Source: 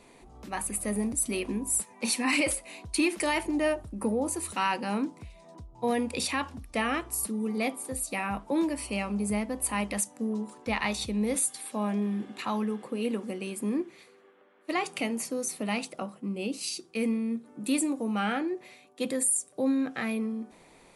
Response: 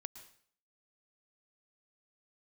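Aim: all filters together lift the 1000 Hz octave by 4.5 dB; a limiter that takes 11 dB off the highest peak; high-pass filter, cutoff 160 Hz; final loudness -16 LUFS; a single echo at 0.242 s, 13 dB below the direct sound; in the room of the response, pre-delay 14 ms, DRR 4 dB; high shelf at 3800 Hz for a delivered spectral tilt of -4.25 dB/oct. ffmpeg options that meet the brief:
-filter_complex "[0:a]highpass=160,equalizer=f=1k:t=o:g=6,highshelf=f=3.8k:g=-6.5,alimiter=level_in=0.5dB:limit=-24dB:level=0:latency=1,volume=-0.5dB,aecho=1:1:242:0.224,asplit=2[a][b];[1:a]atrim=start_sample=2205,adelay=14[c];[b][c]afir=irnorm=-1:irlink=0,volume=0dB[d];[a][d]amix=inputs=2:normalize=0,volume=16dB"

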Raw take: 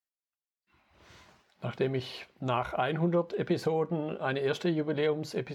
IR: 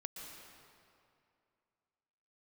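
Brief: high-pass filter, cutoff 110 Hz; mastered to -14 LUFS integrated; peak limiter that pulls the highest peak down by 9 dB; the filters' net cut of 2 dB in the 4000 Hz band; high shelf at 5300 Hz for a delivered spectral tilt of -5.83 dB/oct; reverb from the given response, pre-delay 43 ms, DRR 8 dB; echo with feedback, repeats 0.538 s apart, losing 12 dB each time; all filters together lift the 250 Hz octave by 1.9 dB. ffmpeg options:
-filter_complex "[0:a]highpass=110,equalizer=f=250:t=o:g=3.5,equalizer=f=4k:t=o:g=-5,highshelf=f=5.3k:g=6,alimiter=limit=-23.5dB:level=0:latency=1,aecho=1:1:538|1076|1614:0.251|0.0628|0.0157,asplit=2[a][b];[1:a]atrim=start_sample=2205,adelay=43[c];[b][c]afir=irnorm=-1:irlink=0,volume=-5.5dB[d];[a][d]amix=inputs=2:normalize=0,volume=19.5dB"

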